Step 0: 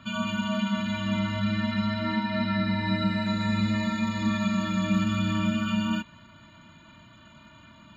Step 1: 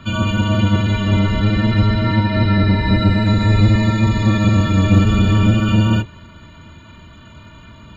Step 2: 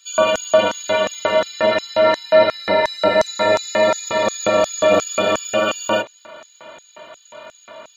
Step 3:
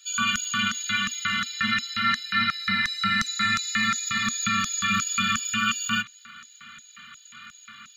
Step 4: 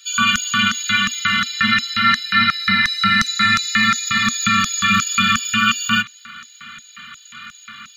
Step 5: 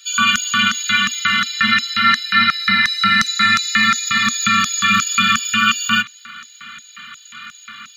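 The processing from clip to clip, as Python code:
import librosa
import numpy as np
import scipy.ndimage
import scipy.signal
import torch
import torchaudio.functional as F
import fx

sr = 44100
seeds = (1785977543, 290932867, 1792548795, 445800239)

y1 = fx.octave_divider(x, sr, octaves=1, level_db=4.0)
y1 = F.gain(torch.from_numpy(y1), 8.0).numpy()
y2 = fx.filter_lfo_highpass(y1, sr, shape='square', hz=2.8, low_hz=590.0, high_hz=6100.0, q=4.7)
y2 = F.gain(torch.from_numpy(y2), 4.0).numpy()
y3 = scipy.signal.sosfilt(scipy.signal.cheby1(5, 1.0, [240.0, 1200.0], 'bandstop', fs=sr, output='sos'), y2)
y4 = fx.notch(y3, sr, hz=7200.0, q=6.7)
y4 = F.gain(torch.from_numpy(y4), 8.5).numpy()
y5 = fx.low_shelf(y4, sr, hz=140.0, db=-9.5)
y5 = F.gain(torch.from_numpy(y5), 1.5).numpy()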